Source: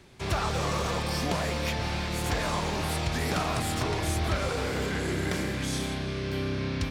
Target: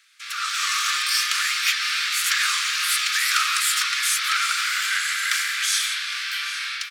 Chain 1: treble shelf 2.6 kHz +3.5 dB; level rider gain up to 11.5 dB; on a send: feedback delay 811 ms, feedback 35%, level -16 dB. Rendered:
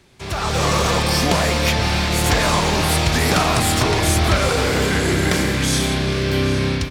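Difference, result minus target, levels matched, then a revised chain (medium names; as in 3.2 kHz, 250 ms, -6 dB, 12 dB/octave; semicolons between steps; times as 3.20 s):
1 kHz band +4.0 dB
steep high-pass 1.2 kHz 96 dB/octave; treble shelf 2.6 kHz +3.5 dB; level rider gain up to 11.5 dB; on a send: feedback delay 811 ms, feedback 35%, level -16 dB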